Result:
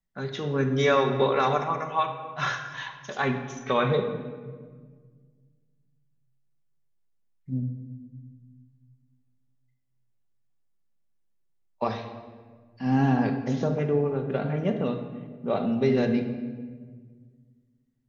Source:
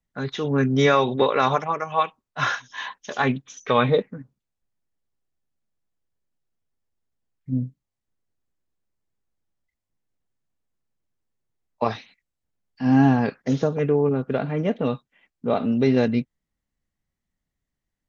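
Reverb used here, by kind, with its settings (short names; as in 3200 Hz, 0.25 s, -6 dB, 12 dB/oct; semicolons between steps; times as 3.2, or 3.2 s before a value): shoebox room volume 1800 m³, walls mixed, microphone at 1.1 m; gain -5 dB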